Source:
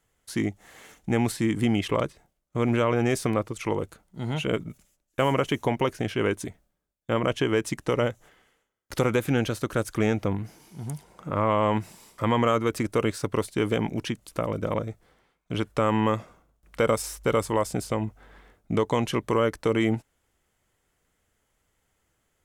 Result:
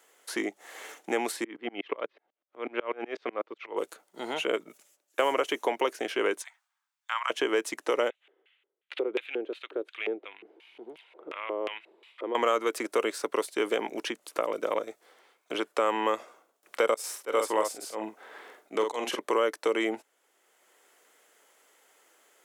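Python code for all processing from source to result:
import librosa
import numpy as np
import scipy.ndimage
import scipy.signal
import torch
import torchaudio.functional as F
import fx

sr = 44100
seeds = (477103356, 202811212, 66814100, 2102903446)

y = fx.chain(x, sr, fx.lowpass(hz=3400.0, slope=24),
    fx.tremolo_decay(direction='swelling', hz=8.1, depth_db=32), at=(1.44, 3.77))
y = fx.chain(y, sr, fx.steep_highpass(hz=870.0, slope=48),
    fx.peak_eq(hz=13000.0, db=-12.0, octaves=0.65), at=(6.42, 7.3))
y = fx.chain(y, sr, fx.high_shelf_res(hz=4500.0, db=-6.5, q=3.0),
    fx.filter_lfo_bandpass(shape='square', hz=2.8, low_hz=380.0, high_hz=2600.0, q=3.5), at=(8.1, 12.35))
y = fx.chain(y, sr, fx.auto_swell(attack_ms=123.0),
    fx.doubler(ms=46.0, db=-5.5), at=(16.94, 19.19))
y = scipy.signal.sosfilt(scipy.signal.butter(4, 360.0, 'highpass', fs=sr, output='sos'), y)
y = fx.band_squash(y, sr, depth_pct=40)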